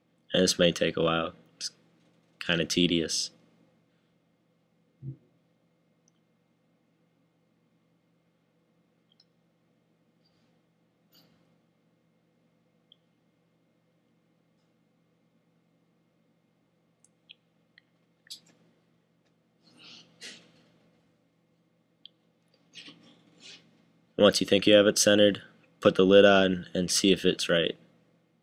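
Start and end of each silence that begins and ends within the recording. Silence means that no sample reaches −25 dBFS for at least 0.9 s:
0:03.24–0:24.19

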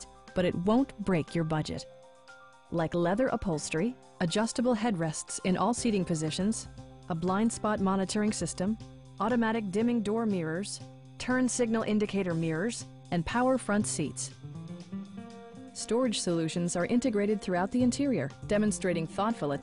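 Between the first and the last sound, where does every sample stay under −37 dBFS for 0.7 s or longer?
0:01.82–0:02.72

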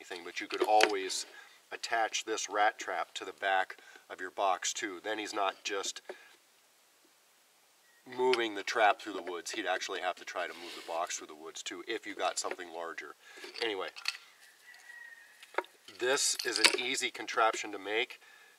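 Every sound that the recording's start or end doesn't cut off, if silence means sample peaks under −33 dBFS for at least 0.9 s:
0:08.13–0:14.15

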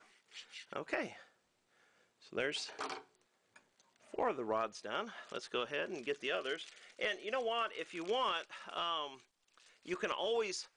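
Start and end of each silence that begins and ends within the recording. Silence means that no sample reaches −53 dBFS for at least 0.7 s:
0:01.23–0:02.22

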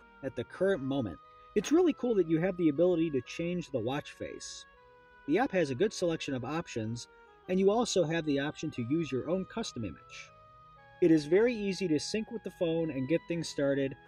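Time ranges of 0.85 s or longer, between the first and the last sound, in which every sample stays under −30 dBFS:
0:04.30–0:05.29
0:09.87–0:11.02

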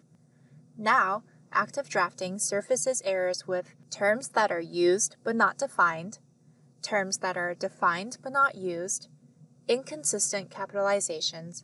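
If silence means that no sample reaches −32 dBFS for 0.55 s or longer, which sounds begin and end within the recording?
0:00.81–0:06.14
0:06.84–0:08.97

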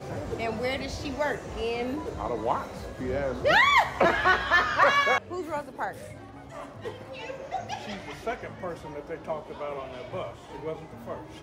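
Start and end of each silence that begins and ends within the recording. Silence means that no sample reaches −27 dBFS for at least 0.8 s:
0:05.89–0:06.86

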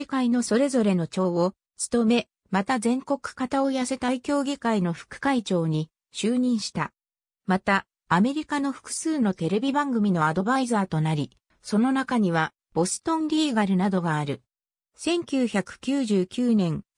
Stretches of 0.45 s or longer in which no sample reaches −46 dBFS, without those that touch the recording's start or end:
0:06.89–0:07.48
0:14.37–0:14.98

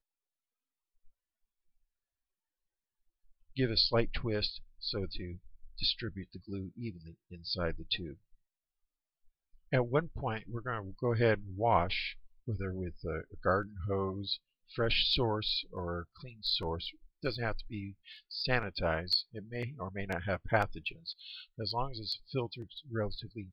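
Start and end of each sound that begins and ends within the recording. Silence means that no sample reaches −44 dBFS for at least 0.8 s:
0:03.57–0:08.14

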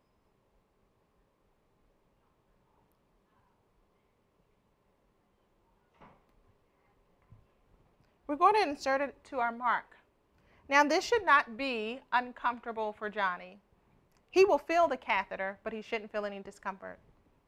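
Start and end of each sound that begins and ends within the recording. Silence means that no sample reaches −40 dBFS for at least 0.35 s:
0:08.29–0:09.81
0:10.70–0:13.46
0:14.34–0:16.94

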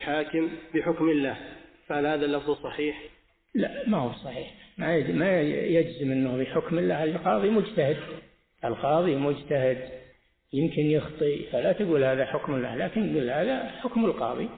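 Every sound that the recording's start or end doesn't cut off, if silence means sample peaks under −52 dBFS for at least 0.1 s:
0:03.55–0:08.34
0:08.58–0:10.15

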